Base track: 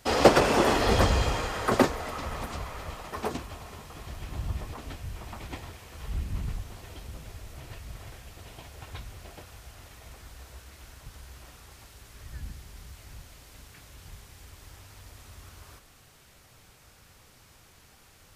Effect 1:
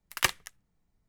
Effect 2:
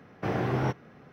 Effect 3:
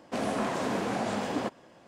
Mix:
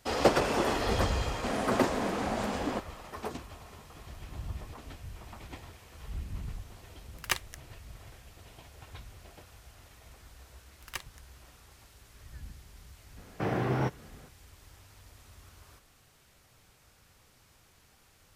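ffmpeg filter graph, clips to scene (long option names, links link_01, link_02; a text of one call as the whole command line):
ffmpeg -i bed.wav -i cue0.wav -i cue1.wav -i cue2.wav -filter_complex "[1:a]asplit=2[link_01][link_02];[0:a]volume=-6dB[link_03];[link_01]dynaudnorm=framelen=110:gausssize=3:maxgain=16dB[link_04];[link_02]aeval=exprs='if(lt(val(0),0),0.708*val(0),val(0))':channel_layout=same[link_05];[3:a]atrim=end=1.87,asetpts=PTS-STARTPTS,volume=-2dB,afade=type=in:duration=0.004:curve=hsin,afade=type=out:start_time=1.866:duration=0.004:curve=hsin,adelay=1310[link_06];[link_04]atrim=end=1.08,asetpts=PTS-STARTPTS,volume=-15.5dB,afade=type=in:duration=0.004:curve=hsin,afade=type=out:start_time=1.076:duration=0.004:curve=hsin,adelay=7070[link_07];[link_05]atrim=end=1.08,asetpts=PTS-STARTPTS,volume=-12.5dB,afade=type=in:duration=0.004:curve=hsin,afade=type=out:start_time=1.076:duration=0.004:curve=hsin,adelay=10710[link_08];[2:a]atrim=end=1.12,asetpts=PTS-STARTPTS,volume=-1.5dB,afade=type=in:duration=0.004:curve=hsin,afade=type=out:start_time=1.116:duration=0.004:curve=hsin,adelay=13170[link_09];[link_03][link_06][link_07][link_08][link_09]amix=inputs=5:normalize=0" out.wav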